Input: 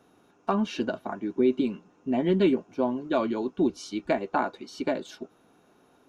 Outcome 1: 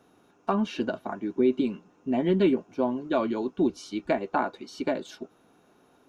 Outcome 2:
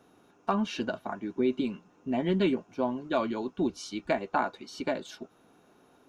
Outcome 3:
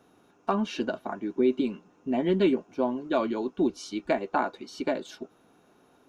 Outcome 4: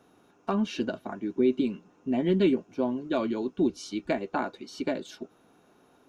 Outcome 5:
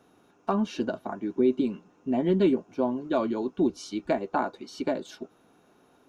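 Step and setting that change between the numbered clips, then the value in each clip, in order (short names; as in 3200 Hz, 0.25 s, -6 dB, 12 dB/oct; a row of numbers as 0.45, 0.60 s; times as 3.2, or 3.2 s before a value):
dynamic EQ, frequency: 6200, 350, 110, 920, 2400 Hz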